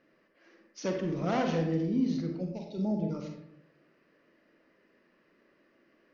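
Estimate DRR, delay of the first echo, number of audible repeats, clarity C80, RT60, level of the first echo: 2.5 dB, no echo audible, no echo audible, 7.5 dB, 0.75 s, no echo audible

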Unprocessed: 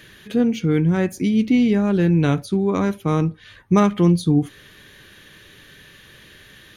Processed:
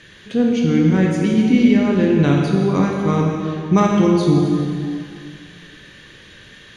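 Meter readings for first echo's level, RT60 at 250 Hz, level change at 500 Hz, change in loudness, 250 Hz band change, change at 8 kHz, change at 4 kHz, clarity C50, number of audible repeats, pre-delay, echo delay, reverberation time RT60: no echo audible, 2.3 s, +3.5 dB, +2.5 dB, +3.5 dB, can't be measured, +3.5 dB, 1.0 dB, no echo audible, 17 ms, no echo audible, 2.3 s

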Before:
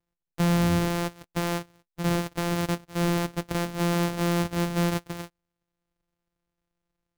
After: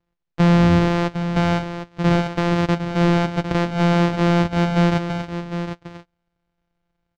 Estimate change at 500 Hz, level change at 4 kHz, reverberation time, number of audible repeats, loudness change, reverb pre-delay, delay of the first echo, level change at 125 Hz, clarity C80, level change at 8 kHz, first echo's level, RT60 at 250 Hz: +8.0 dB, +5.0 dB, no reverb audible, 1, +7.5 dB, no reverb audible, 756 ms, +9.0 dB, no reverb audible, can't be measured, −9.5 dB, no reverb audible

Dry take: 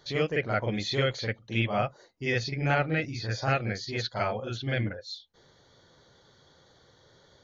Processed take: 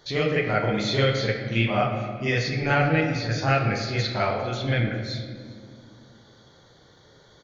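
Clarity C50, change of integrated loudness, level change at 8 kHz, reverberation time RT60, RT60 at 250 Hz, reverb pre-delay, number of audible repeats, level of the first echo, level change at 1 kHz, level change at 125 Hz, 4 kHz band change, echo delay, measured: 5.0 dB, +5.5 dB, can't be measured, 2.1 s, 3.1 s, 15 ms, 1, −22.0 dB, +5.5 dB, +6.0 dB, +4.5 dB, 401 ms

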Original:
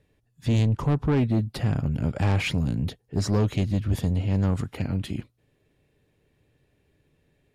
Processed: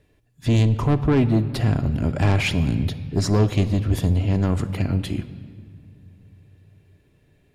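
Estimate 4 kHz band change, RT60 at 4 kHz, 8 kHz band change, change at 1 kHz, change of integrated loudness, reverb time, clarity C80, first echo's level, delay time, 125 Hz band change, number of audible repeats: +4.5 dB, 1.5 s, +5.0 dB, +5.0 dB, +4.0 dB, 2.1 s, 15.0 dB, no echo audible, no echo audible, +4.0 dB, no echo audible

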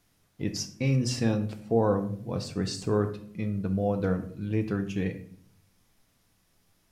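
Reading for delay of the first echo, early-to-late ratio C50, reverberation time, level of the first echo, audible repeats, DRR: no echo audible, 11.5 dB, 0.60 s, no echo audible, no echo audible, 6.5 dB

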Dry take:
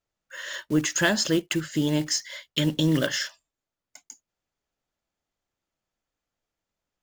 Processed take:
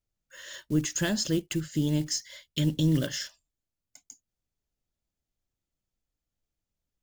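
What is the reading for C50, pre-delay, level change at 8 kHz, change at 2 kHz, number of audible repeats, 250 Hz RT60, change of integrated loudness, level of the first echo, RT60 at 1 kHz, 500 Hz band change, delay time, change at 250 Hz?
no reverb audible, no reverb audible, −4.0 dB, −10.5 dB, no echo audible, no reverb audible, −3.5 dB, no echo audible, no reverb audible, −6.5 dB, no echo audible, −3.0 dB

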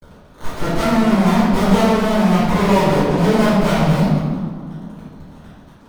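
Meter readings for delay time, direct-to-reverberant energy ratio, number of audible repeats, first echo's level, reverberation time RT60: no echo audible, −14.0 dB, no echo audible, no echo audible, 2.0 s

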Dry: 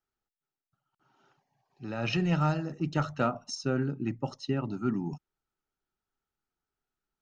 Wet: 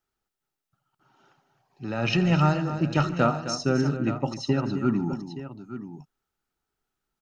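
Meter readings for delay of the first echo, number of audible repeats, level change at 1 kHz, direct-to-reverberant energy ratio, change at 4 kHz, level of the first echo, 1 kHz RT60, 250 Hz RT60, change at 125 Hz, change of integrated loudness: 82 ms, 4, +6.0 dB, no reverb audible, +6.0 dB, −20.0 dB, no reverb audible, no reverb audible, +6.0 dB, +6.0 dB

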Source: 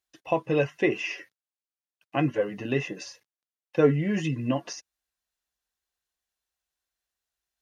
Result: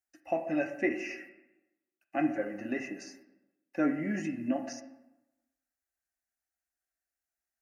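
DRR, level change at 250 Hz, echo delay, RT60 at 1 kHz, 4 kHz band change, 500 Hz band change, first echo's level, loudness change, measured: 6.5 dB, −3.0 dB, no echo audible, 0.95 s, −12.5 dB, −9.0 dB, no echo audible, −6.0 dB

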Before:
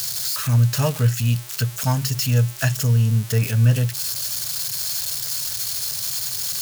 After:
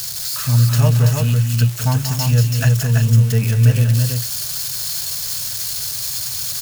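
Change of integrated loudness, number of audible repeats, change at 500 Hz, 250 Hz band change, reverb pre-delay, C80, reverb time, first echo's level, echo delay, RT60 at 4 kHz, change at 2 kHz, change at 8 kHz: +4.0 dB, 3, +2.0 dB, +4.0 dB, no reverb audible, no reverb audible, no reverb audible, −10.5 dB, 186 ms, no reverb audible, +2.0 dB, +2.0 dB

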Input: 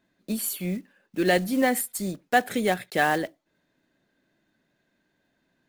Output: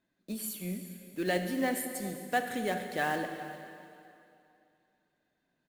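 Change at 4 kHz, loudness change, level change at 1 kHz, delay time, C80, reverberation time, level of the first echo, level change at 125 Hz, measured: −8.0 dB, −8.5 dB, −8.0 dB, 399 ms, 7.0 dB, 2.7 s, −18.0 dB, −7.0 dB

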